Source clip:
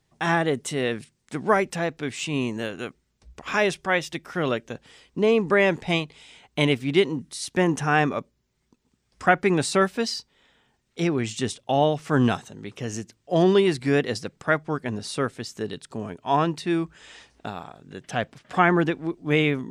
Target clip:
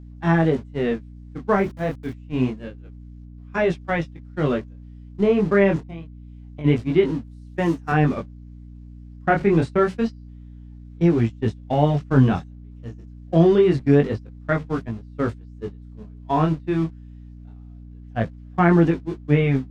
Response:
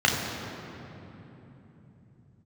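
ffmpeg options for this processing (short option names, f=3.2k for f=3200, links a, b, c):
-filter_complex "[0:a]aeval=exprs='val(0)+0.5*0.0316*sgn(val(0))':c=same,lowpass=6.3k,acrossover=split=2500[a][b];[b]acompressor=threshold=-40dB:ratio=4:attack=1:release=60[c];[a][c]amix=inputs=2:normalize=0,asettb=1/sr,asplit=3[d][e][f];[d]atrim=end=7.234[g];[e]atrim=start=7.23:end=7.92,asetpts=PTS-STARTPTS,afade=t=in:d=0.004:c=qsin,afade=t=out:st=0.686:d=0.004:c=qsin,aemphasis=mode=production:type=bsi[h];[f]atrim=start=7.916[i];[g][h]acrossfade=d=0.004:c1=hsin:c2=qsin[j];[j][i]acrossfade=d=0.004:c1=qsin:c2=hsin,agate=range=-34dB:threshold=-24dB:ratio=16:detection=peak,lowshelf=f=330:g=10.5,asplit=3[k][l][m];[k]afade=t=out:st=5.8:d=0.02[n];[l]acompressor=threshold=-33dB:ratio=5,afade=t=in:st=5.8:d=0.02,afade=t=out:st=6.64:d=0.02[o];[m]afade=t=in:st=6.64:d=0.02[p];[n][o][p]amix=inputs=3:normalize=0,flanger=delay=17.5:depth=7.8:speed=0.27,asplit=3[q][r][s];[q]afade=t=out:st=1.57:d=0.02[t];[r]aeval=exprs='val(0)*gte(abs(val(0)),0.00631)':c=same,afade=t=in:st=1.57:d=0.02,afade=t=out:st=2.12:d=0.02[u];[s]afade=t=in:st=2.12:d=0.02[v];[t][u][v]amix=inputs=3:normalize=0,aeval=exprs='val(0)+0.0112*(sin(2*PI*60*n/s)+sin(2*PI*2*60*n/s)/2+sin(2*PI*3*60*n/s)/3+sin(2*PI*4*60*n/s)/4+sin(2*PI*5*60*n/s)/5)':c=same"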